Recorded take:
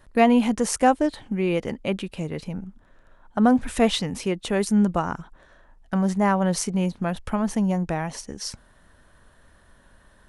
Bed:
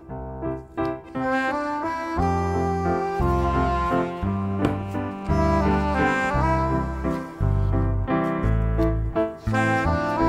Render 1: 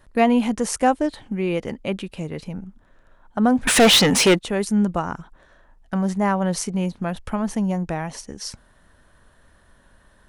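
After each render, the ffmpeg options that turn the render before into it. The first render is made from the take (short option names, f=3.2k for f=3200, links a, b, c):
-filter_complex "[0:a]asettb=1/sr,asplit=3[a][b][c];[a]atrim=end=3.674[d];[b]atrim=start=3.67:end=4.39,asetpts=PTS-STARTPTS,afade=t=in:d=0.004:c=qsin,afade=t=out:st=0.716:d=0.004:c=qsin,asplit=2[e][f];[f]highpass=f=720:p=1,volume=30dB,asoftclip=type=tanh:threshold=-5.5dB[g];[e][g]amix=inputs=2:normalize=0,lowpass=f=7.3k:p=1,volume=-6dB[h];[c]atrim=start=4.386[i];[d][h]acrossfade=d=0.004:c1=hsin:c2=qsin[j];[j][i]acrossfade=d=0.004:c1=qsin:c2=hsin"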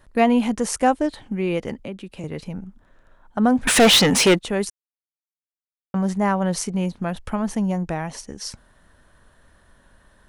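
-filter_complex "[0:a]asettb=1/sr,asplit=3[a][b][c];[a]atrim=end=1.794[d];[b]atrim=start=1.79:end=2.24,asetpts=PTS-STARTPTS,afade=t=in:d=0.004:c=qsin,afade=t=out:st=0.446:d=0.004:c=qsin,acrossover=split=190|410[e][f][g];[e]acompressor=threshold=-43dB:ratio=4[h];[f]acompressor=threshold=-34dB:ratio=4[i];[g]acompressor=threshold=-40dB:ratio=4[j];[h][i][j]amix=inputs=3:normalize=0[k];[c]atrim=start=2.236[l];[d][k]acrossfade=d=0.004:c1=hsin:c2=qsin[m];[m][l]acrossfade=d=0.004:c1=qsin:c2=hsin,asplit=3[n][o][p];[n]atrim=end=4.7,asetpts=PTS-STARTPTS,afade=t=out:st=4.696:d=0.004:c=hsin[q];[o]atrim=start=4.7:end=5.94,asetpts=PTS-STARTPTS,volume=0[r];[p]atrim=start=5.94,asetpts=PTS-STARTPTS,afade=t=in:d=0.004:c=hsin[s];[q][r][s]concat=n=3:v=0:a=1"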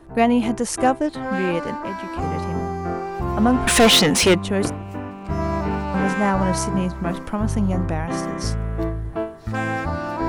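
-filter_complex "[1:a]volume=-3dB[a];[0:a][a]amix=inputs=2:normalize=0"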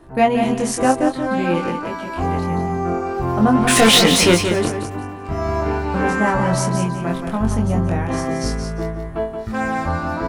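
-filter_complex "[0:a]asplit=2[a][b];[b]adelay=23,volume=-3dB[c];[a][c]amix=inputs=2:normalize=0,asplit=2[d][e];[e]aecho=0:1:176|352|528:0.447|0.103|0.0236[f];[d][f]amix=inputs=2:normalize=0"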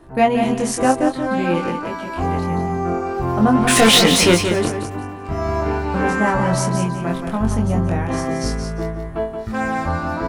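-af anull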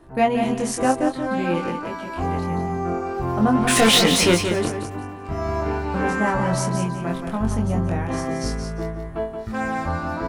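-af "volume=-3.5dB"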